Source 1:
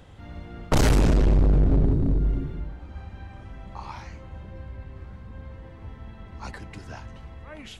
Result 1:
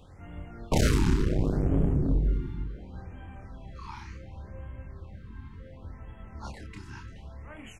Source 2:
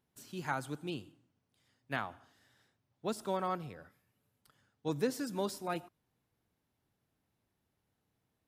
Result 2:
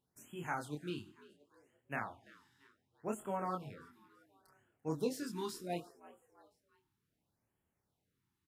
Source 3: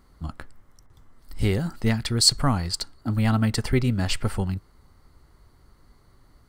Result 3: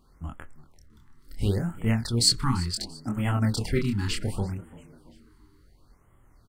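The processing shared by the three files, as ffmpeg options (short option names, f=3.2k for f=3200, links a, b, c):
-filter_complex "[0:a]flanger=delay=22.5:depth=7.4:speed=0.36,asplit=4[a][b][c][d];[b]adelay=340,afreqshift=69,volume=-20.5dB[e];[c]adelay=680,afreqshift=138,volume=-27.1dB[f];[d]adelay=1020,afreqshift=207,volume=-33.6dB[g];[a][e][f][g]amix=inputs=4:normalize=0,afftfilt=real='re*(1-between(b*sr/1024,550*pow(4900/550,0.5+0.5*sin(2*PI*0.69*pts/sr))/1.41,550*pow(4900/550,0.5+0.5*sin(2*PI*0.69*pts/sr))*1.41))':imag='im*(1-between(b*sr/1024,550*pow(4900/550,0.5+0.5*sin(2*PI*0.69*pts/sr))/1.41,550*pow(4900/550,0.5+0.5*sin(2*PI*0.69*pts/sr))*1.41))':win_size=1024:overlap=0.75"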